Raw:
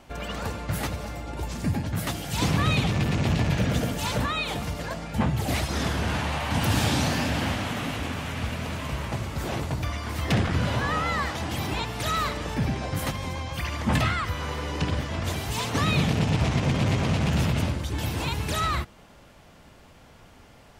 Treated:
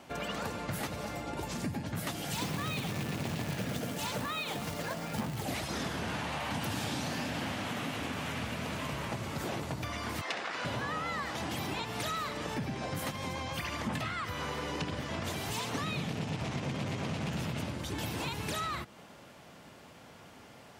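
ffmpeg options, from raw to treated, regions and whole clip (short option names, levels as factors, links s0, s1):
-filter_complex "[0:a]asettb=1/sr,asplit=3[s0][s1][s2];[s0]atrim=end=2.344[s3];[s1]atrim=start=2.34:end=5.43,asetpts=PTS-STARTPTS,afade=t=in:d=0.004:c=qsin,afade=t=out:st=3.086:d=0.004:c=qsin,acrusher=bits=3:mode=log:mix=0:aa=0.000001,highpass=56[s4];[s2]atrim=start=5.426[s5];[s3][s4]acrossfade=d=0.004:c1=hsin:c2=qsin[s6];[s6][s5]acrossfade=d=0.004:c1=qsin:c2=hsin,asettb=1/sr,asplit=3[s7][s8][s9];[s7]atrim=end=10.214[s10];[s8]atrim=start=10.21:end=10.65,asetpts=PTS-STARTPTS,afade=t=in:d=0.004:c=qsin,afade=t=out:st=0.436:d=0.004:c=qsin,highpass=650,lowpass=6900,bandreject=f=3200:w=16[s11];[s9]atrim=start=10.646[s12];[s10][s11]acrossfade=d=0.004:c1=hsin:c2=qsin[s13];[s13][s12]acrossfade=d=0.004:c1=qsin:c2=hsin,highpass=130,acompressor=threshold=0.0224:ratio=5"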